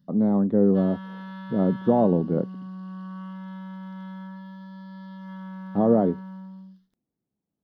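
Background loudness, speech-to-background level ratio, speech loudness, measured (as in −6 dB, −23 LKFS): −39.0 LKFS, 16.0 dB, −23.0 LKFS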